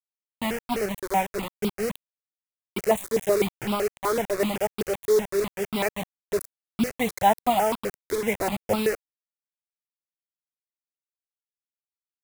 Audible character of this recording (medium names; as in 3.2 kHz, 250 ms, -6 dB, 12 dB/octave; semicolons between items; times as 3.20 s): tremolo saw up 0.8 Hz, depth 30%; a quantiser's noise floor 6-bit, dither none; notches that jump at a steady rate 7.9 Hz 740–1800 Hz